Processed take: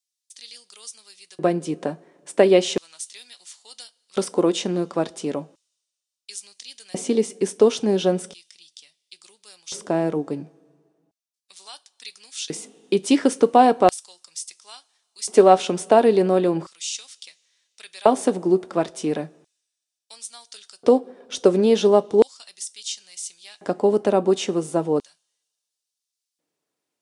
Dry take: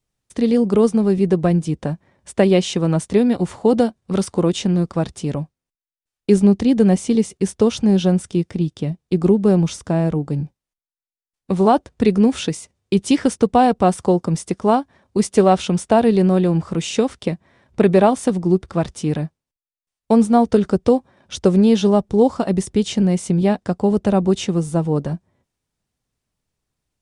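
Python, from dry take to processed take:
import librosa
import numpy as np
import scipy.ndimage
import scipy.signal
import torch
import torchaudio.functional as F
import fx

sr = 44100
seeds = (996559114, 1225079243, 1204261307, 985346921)

y = fx.rev_double_slope(x, sr, seeds[0], early_s=0.24, late_s=2.2, knee_db=-21, drr_db=13.5)
y = fx.filter_lfo_highpass(y, sr, shape='square', hz=0.36, low_hz=350.0, high_hz=4500.0, q=1.2)
y = y * 10.0 ** (-1.0 / 20.0)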